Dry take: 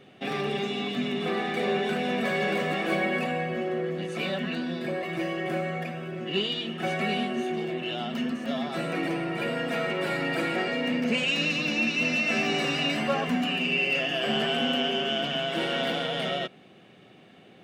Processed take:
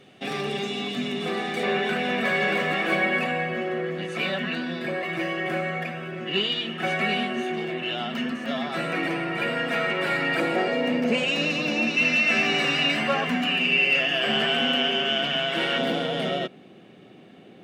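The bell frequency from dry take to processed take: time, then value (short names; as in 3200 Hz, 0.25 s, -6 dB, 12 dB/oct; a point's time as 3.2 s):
bell +6.5 dB 2 oct
8000 Hz
from 1.63 s 1800 Hz
from 10.4 s 600 Hz
from 11.97 s 2000 Hz
from 15.78 s 290 Hz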